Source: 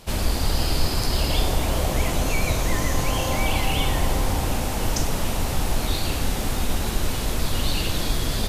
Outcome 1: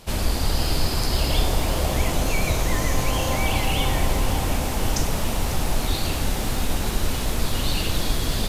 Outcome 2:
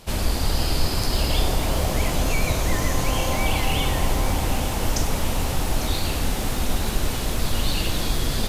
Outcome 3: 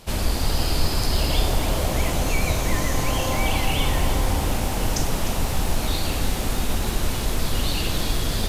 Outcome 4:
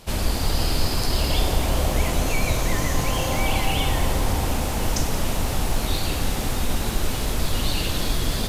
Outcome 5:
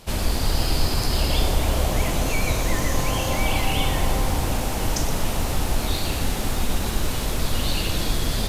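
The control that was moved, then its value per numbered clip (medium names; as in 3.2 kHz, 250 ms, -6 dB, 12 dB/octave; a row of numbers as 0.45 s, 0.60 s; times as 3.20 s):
bit-crushed delay, time: 546 ms, 849 ms, 303 ms, 177 ms, 119 ms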